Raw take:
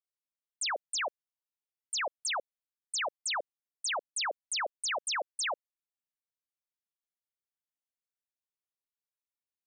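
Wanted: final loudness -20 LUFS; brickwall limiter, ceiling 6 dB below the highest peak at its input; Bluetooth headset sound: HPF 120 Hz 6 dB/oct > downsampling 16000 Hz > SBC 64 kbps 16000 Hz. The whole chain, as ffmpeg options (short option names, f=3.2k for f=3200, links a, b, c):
-af "alimiter=level_in=11dB:limit=-24dB:level=0:latency=1,volume=-11dB,highpass=f=120:p=1,aresample=16000,aresample=44100,volume=20.5dB" -ar 16000 -c:a sbc -b:a 64k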